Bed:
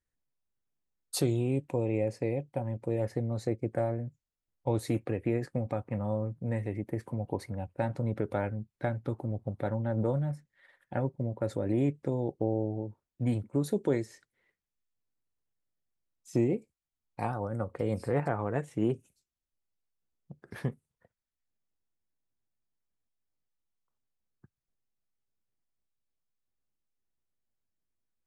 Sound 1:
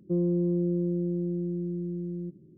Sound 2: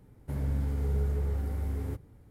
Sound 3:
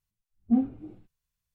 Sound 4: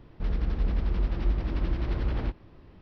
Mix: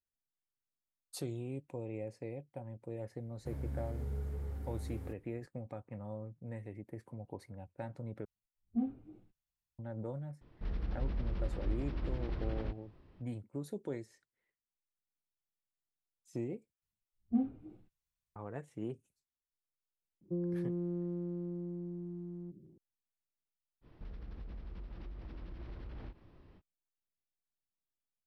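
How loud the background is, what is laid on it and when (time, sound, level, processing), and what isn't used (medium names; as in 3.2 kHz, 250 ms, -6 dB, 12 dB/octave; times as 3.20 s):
bed -12 dB
3.17 s: add 2 -10 dB
8.25 s: replace with 3 -11 dB
10.41 s: add 4 -9.5 dB
16.82 s: replace with 3 -8.5 dB
20.21 s: add 1 -10.5 dB + transient shaper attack +2 dB, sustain +7 dB
23.81 s: add 4 -8 dB, fades 0.05 s + compression 10:1, threshold -34 dBFS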